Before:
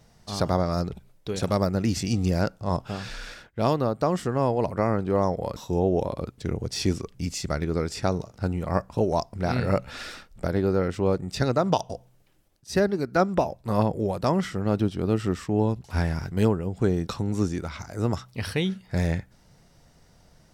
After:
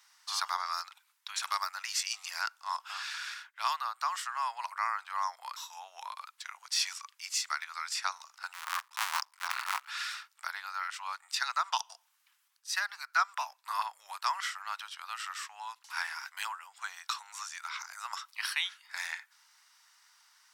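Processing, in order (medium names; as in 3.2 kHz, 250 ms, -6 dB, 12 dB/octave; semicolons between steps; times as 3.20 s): 8.53–9.88 s: cycle switcher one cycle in 2, muted; steep high-pass 980 Hz 48 dB/octave; trim +1.5 dB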